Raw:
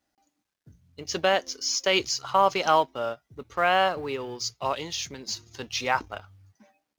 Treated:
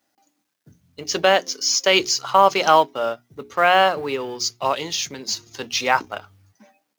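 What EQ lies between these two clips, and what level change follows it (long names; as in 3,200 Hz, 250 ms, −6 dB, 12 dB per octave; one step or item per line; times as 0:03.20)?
high-pass filter 140 Hz 12 dB per octave
high-shelf EQ 11,000 Hz +5.5 dB
mains-hum notches 60/120/180/240/300/360/420 Hz
+6.5 dB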